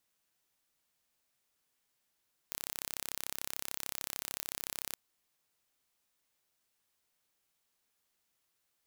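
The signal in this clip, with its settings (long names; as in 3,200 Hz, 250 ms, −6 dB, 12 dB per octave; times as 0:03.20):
impulse train 33.5 per second, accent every 0, −10.5 dBFS 2.42 s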